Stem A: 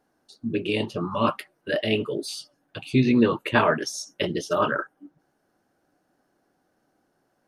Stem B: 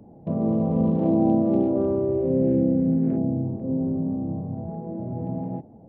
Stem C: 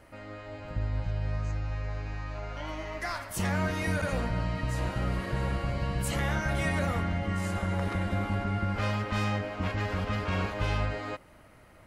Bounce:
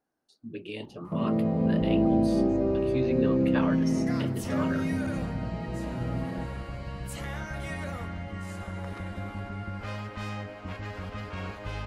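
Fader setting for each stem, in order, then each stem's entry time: -12.5 dB, -3.5 dB, -6.5 dB; 0.00 s, 0.85 s, 1.05 s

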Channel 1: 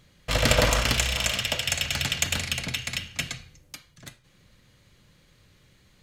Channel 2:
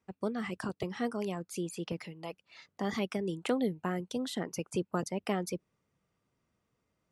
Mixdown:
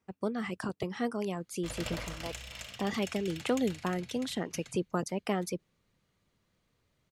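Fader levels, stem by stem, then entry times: -19.0 dB, +1.0 dB; 1.35 s, 0.00 s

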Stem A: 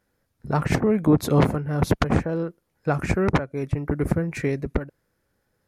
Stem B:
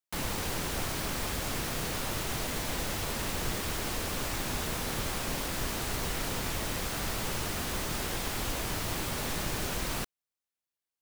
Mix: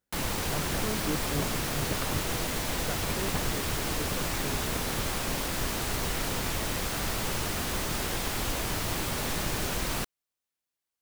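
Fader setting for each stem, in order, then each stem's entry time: -15.0 dB, +2.5 dB; 0.00 s, 0.00 s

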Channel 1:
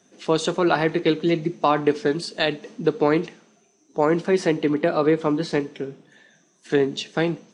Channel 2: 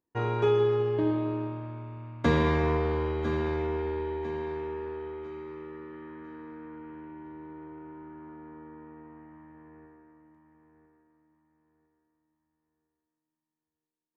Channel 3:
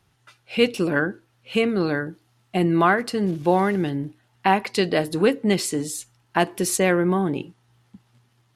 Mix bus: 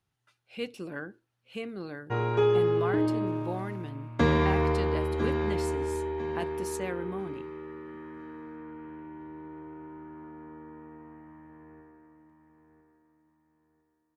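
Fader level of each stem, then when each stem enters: mute, +0.5 dB, -16.5 dB; mute, 1.95 s, 0.00 s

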